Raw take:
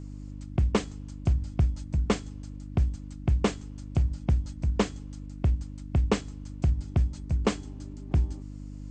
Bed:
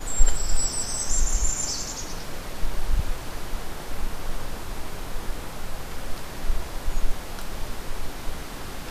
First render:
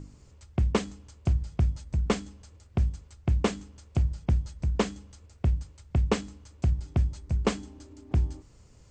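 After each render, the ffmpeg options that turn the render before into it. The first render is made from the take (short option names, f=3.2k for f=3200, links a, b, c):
-af "bandreject=f=50:t=h:w=4,bandreject=f=100:t=h:w=4,bandreject=f=150:t=h:w=4,bandreject=f=200:t=h:w=4,bandreject=f=250:t=h:w=4,bandreject=f=300:t=h:w=4"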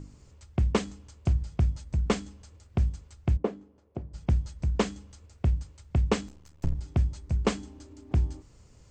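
-filter_complex "[0:a]asplit=3[a][b][c];[a]afade=t=out:st=3.36:d=0.02[d];[b]bandpass=f=430:t=q:w=1.1,afade=t=in:st=3.36:d=0.02,afade=t=out:st=4.13:d=0.02[e];[c]afade=t=in:st=4.13:d=0.02[f];[d][e][f]amix=inputs=3:normalize=0,asettb=1/sr,asplit=3[g][h][i];[g]atrim=end=6.284[j];[h]atrim=start=6.28:end=6.75,asetpts=PTS-STARTPTS,afade=t=in:d=0.004:c=qsin,afade=t=out:st=0.466:d=0.004:c=qsin,aeval=exprs='max(val(0),0)':c=same[k];[i]atrim=start=6.746[l];[j][k]acrossfade=d=0.004:c1=hsin:c2=qsin[m];[m][l]acrossfade=d=0.004:c1=qsin:c2=hsin"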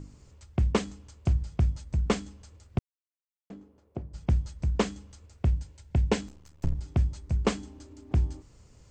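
-filter_complex "[0:a]asettb=1/sr,asplit=3[a][b][c];[a]atrim=end=5.604[d];[b]atrim=start=5.6:end=6.2,asetpts=PTS-STARTPTS,afade=t=in:d=0.004:c=qsin,afade=t=out:st=0.596:d=0.004:c=qsin,asuperstop=centerf=1200:order=4:qfactor=5.2[e];[c]atrim=start=6.196[f];[d][e]acrossfade=d=0.004:c1=hsin:c2=qsin[g];[g][f]acrossfade=d=0.004:c1=qsin:c2=hsin,asplit=3[h][i][j];[h]atrim=end=2.79,asetpts=PTS-STARTPTS,afade=t=out:st=2.786:d=0.004:c=hsin[k];[i]atrim=start=2.79:end=3.5,asetpts=PTS-STARTPTS,volume=0[l];[j]atrim=start=3.5,asetpts=PTS-STARTPTS,afade=t=in:d=0.004:c=hsin[m];[k][l][m]concat=n=3:v=0:a=1"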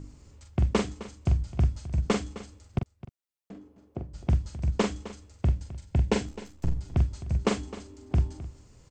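-filter_complex "[0:a]asplit=2[a][b];[b]adelay=43,volume=-6dB[c];[a][c]amix=inputs=2:normalize=0,aecho=1:1:260:0.168"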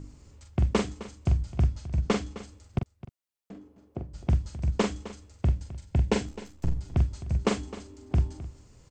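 -filter_complex "[0:a]asettb=1/sr,asplit=3[a][b][c];[a]atrim=end=1.664[d];[b]atrim=start=1.66:end=2.39,asetpts=PTS-STARTPTS,afade=t=in:d=0.004:c=qsin,afade=t=out:st=0.726:d=0.004:c=qsin,lowpass=7.5k[e];[c]atrim=start=2.386[f];[d][e]acrossfade=d=0.004:c1=hsin:c2=qsin[g];[g][f]acrossfade=d=0.004:c1=qsin:c2=hsin"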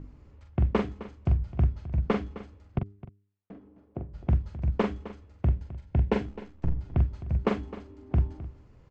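-af "lowpass=2.2k,bandreject=f=100.4:t=h:w=4,bandreject=f=200.8:t=h:w=4,bandreject=f=301.2:t=h:w=4,bandreject=f=401.6:t=h:w=4"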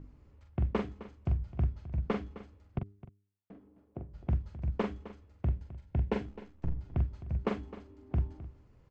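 -af "volume=-6dB"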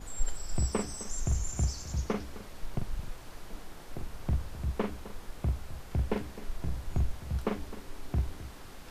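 -filter_complex "[1:a]volume=-13dB[a];[0:a][a]amix=inputs=2:normalize=0"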